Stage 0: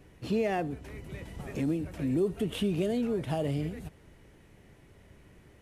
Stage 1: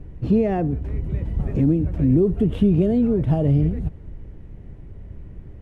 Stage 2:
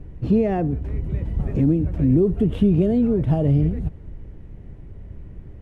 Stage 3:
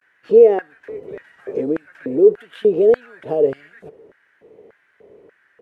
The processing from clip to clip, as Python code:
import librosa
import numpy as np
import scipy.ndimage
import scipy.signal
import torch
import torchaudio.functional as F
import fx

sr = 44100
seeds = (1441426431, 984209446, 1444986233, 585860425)

y1 = fx.tilt_eq(x, sr, slope=-4.5)
y1 = y1 * 10.0 ** (2.5 / 20.0)
y2 = y1
y3 = fx.vibrato(y2, sr, rate_hz=0.47, depth_cents=67.0)
y3 = fx.filter_lfo_highpass(y3, sr, shape='square', hz=1.7, low_hz=450.0, high_hz=1600.0, q=6.8)
y3 = y3 * 10.0 ** (-1.0 / 20.0)